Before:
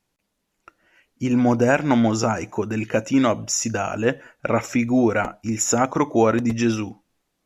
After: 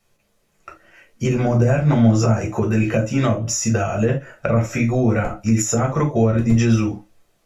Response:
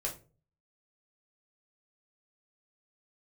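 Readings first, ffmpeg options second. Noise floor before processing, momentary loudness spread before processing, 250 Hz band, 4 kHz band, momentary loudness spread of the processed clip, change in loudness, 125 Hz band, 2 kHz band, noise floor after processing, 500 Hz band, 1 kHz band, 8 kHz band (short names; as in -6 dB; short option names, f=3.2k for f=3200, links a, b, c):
-76 dBFS, 8 LU, +1.5 dB, -0.5 dB, 6 LU, +2.5 dB, +10.5 dB, -1.5 dB, -65 dBFS, +0.5 dB, -2.5 dB, 0.0 dB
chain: -filter_complex "[1:a]atrim=start_sample=2205,atrim=end_sample=3969[a];[0:a][a]afir=irnorm=-1:irlink=0,acrossover=split=200[b][c];[c]acompressor=threshold=-28dB:ratio=6[d];[b][d]amix=inputs=2:normalize=0,volume=7.5dB"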